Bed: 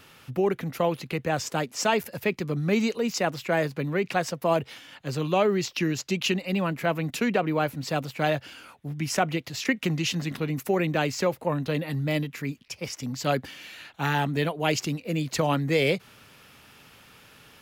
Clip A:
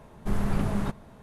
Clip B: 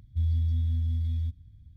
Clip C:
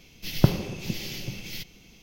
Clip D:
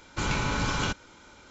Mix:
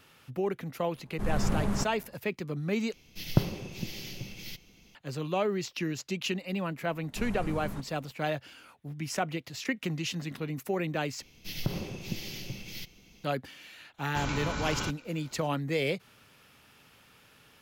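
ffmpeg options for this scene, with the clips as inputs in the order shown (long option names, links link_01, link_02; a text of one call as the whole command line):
ffmpeg -i bed.wav -i cue0.wav -i cue1.wav -i cue2.wav -i cue3.wav -filter_complex "[1:a]asplit=2[link_01][link_02];[3:a]asplit=2[link_03][link_04];[0:a]volume=-6.5dB[link_05];[link_01]dynaudnorm=framelen=120:gausssize=5:maxgain=13dB[link_06];[link_02]equalizer=frequency=7200:width_type=o:width=0.89:gain=4.5[link_07];[link_04]alimiter=limit=-12dB:level=0:latency=1:release=105[link_08];[link_05]asplit=3[link_09][link_10][link_11];[link_09]atrim=end=2.934[link_12];[link_03]atrim=end=2.02,asetpts=PTS-STARTPTS,volume=-5.5dB[link_13];[link_10]atrim=start=4.946:end=11.224[link_14];[link_08]atrim=end=2.02,asetpts=PTS-STARTPTS,volume=-4.5dB[link_15];[link_11]atrim=start=13.236[link_16];[link_06]atrim=end=1.22,asetpts=PTS-STARTPTS,volume=-13dB,afade=type=in:duration=0.004:curve=hsin,afade=type=out:start_time=1.216:duration=0.004:curve=hsin,adelay=930[link_17];[link_07]atrim=end=1.22,asetpts=PTS-STARTPTS,volume=-10.5dB,afade=type=in:duration=0.004:curve=hsin,afade=type=out:start_time=1.216:duration=0.004:curve=hsin,adelay=304290S[link_18];[4:a]atrim=end=1.5,asetpts=PTS-STARTPTS,volume=-6dB,afade=type=in:duration=0.004:curve=hsin,afade=type=out:start_time=1.496:duration=0.004:curve=hsin,adelay=13980[link_19];[link_12][link_13]acrossfade=duration=0.004:curve1=hsin:curve2=hsin[link_20];[link_20][link_14]acrossfade=duration=0.004:curve1=hsin:curve2=hsin[link_21];[link_21][link_15]acrossfade=duration=0.004:curve1=hsin:curve2=hsin[link_22];[link_22][link_16]acrossfade=duration=0.004:curve1=hsin:curve2=hsin[link_23];[link_23][link_17][link_18][link_19]amix=inputs=4:normalize=0" out.wav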